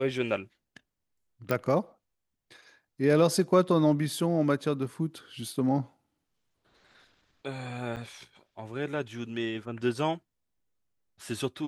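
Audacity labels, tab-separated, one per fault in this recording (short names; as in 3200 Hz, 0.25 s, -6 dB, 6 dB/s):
1.510000	1.510000	pop -14 dBFS
7.960000	7.970000	gap 8.3 ms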